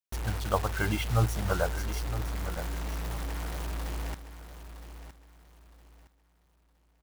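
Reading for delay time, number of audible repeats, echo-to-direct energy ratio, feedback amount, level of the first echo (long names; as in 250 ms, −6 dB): 964 ms, 3, −11.0 dB, 30%, −11.5 dB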